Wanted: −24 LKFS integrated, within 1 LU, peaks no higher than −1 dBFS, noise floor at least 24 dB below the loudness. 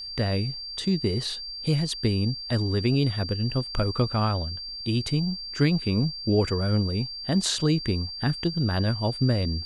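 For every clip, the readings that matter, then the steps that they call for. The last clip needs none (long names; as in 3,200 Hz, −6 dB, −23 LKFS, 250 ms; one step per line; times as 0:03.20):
crackle rate 30 per second; interfering tone 4,700 Hz; level of the tone −34 dBFS; integrated loudness −26.0 LKFS; sample peak −9.5 dBFS; target loudness −24.0 LKFS
→ click removal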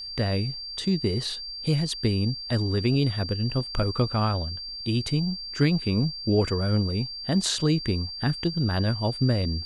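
crackle rate 0 per second; interfering tone 4,700 Hz; level of the tone −34 dBFS
→ notch filter 4,700 Hz, Q 30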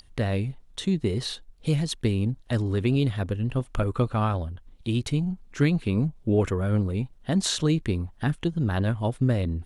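interfering tone none found; integrated loudness −26.5 LKFS; sample peak −9.5 dBFS; target loudness −24.0 LKFS
→ level +2.5 dB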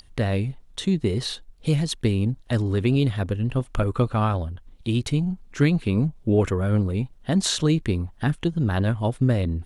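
integrated loudness −24.0 LKFS; sample peak −7.0 dBFS; background noise floor −50 dBFS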